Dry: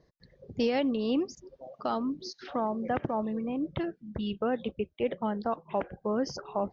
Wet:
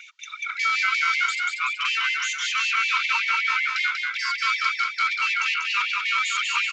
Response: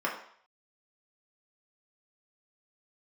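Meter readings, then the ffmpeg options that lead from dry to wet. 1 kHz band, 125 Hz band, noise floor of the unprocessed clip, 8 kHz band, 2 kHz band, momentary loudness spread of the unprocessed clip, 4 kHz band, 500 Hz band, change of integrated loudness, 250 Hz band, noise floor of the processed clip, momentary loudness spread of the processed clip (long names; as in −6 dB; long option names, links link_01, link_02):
+9.0 dB, below −40 dB, −68 dBFS, can't be measured, +25.0 dB, 8 LU, +18.0 dB, below −40 dB, +10.0 dB, below −40 dB, −40 dBFS, 4 LU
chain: -filter_complex "[0:a]highpass=330,aecho=1:1:2.2:0.39,acrusher=bits=8:mode=log:mix=0:aa=0.000001,asplit=2[link_01][link_02];[link_02]highpass=frequency=720:poles=1,volume=37dB,asoftclip=type=tanh:threshold=-17dB[link_03];[link_01][link_03]amix=inputs=2:normalize=0,lowpass=frequency=2400:poles=1,volume=-6dB,aeval=exprs='val(0)*sin(2*PI*1800*n/s)':channel_layout=same,aecho=1:1:190|380|570|760|950|1140:0.631|0.297|0.139|0.0655|0.0308|0.0145,aresample=16000,aresample=44100,afftfilt=real='re*gte(b*sr/1024,900*pow(1800/900,0.5+0.5*sin(2*PI*5.3*pts/sr)))':imag='im*gte(b*sr/1024,900*pow(1800/900,0.5+0.5*sin(2*PI*5.3*pts/sr)))':win_size=1024:overlap=0.75,volume=3.5dB"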